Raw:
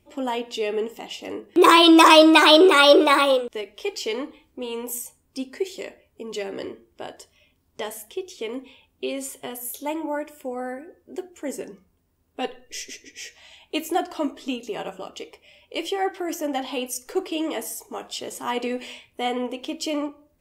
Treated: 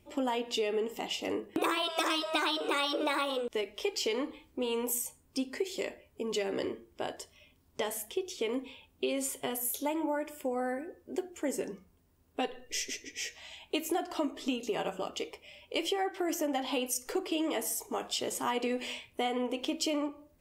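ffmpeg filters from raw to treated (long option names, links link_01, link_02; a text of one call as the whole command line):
ffmpeg -i in.wav -filter_complex "[0:a]asettb=1/sr,asplit=3[link_01][link_02][link_03];[link_01]atrim=end=1.484[link_04];[link_02]atrim=start=1.48:end=1.9,asetpts=PTS-STARTPTS,afade=type=in:duration=0.004:curve=qsin,afade=type=out:start_time=0.416:duration=0.004:curve=qsin,equalizer=frequency=4800:width=1:gain=-6[link_05];[link_03]atrim=start=1.896[link_06];[link_04][link_05]acrossfade=duration=0.004:curve1=hsin:curve2=qsin[link_07];[link_07][link_06]acrossfade=duration=0.004:curve1=qsin:curve2=hsin,afftfilt=real='re*lt(hypot(re,im),1.41)':imag='im*lt(hypot(re,im),1.41)':win_size=1024:overlap=0.75,acompressor=threshold=-28dB:ratio=8" out.wav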